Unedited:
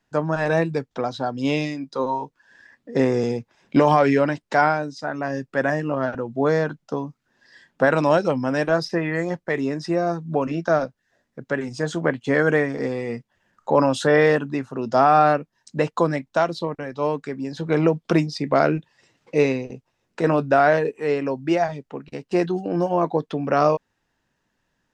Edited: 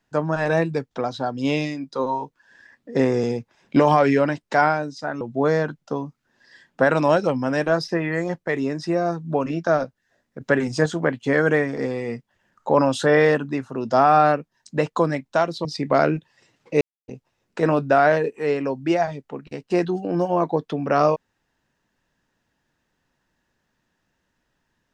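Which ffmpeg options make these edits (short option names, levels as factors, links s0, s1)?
-filter_complex "[0:a]asplit=7[s0][s1][s2][s3][s4][s5][s6];[s0]atrim=end=5.212[s7];[s1]atrim=start=6.218:end=11.422[s8];[s2]atrim=start=11.418:end=11.872,asetpts=PTS-STARTPTS,volume=1.88[s9];[s3]atrim=start=11.868:end=16.662[s10];[s4]atrim=start=18.258:end=19.42,asetpts=PTS-STARTPTS,afade=t=out:st=1.158:d=0.004:c=hsin[s11];[s5]atrim=start=19.42:end=19.69,asetpts=PTS-STARTPTS,volume=0[s12];[s6]atrim=start=19.69,asetpts=PTS-STARTPTS,afade=t=in:d=0.004:c=hsin[s13];[s7][s8]acrossfade=d=0.004:c1=hsin:c2=hsin[s14];[s14][s9]acrossfade=d=0.004:c1=hsin:c2=hsin[s15];[s15][s10]acrossfade=d=0.004:c1=hsin:c2=hsin[s16];[s11][s12][s13]concat=n=3:v=0:a=1[s17];[s16][s17]acrossfade=d=0.004:c1=hsin:c2=hsin"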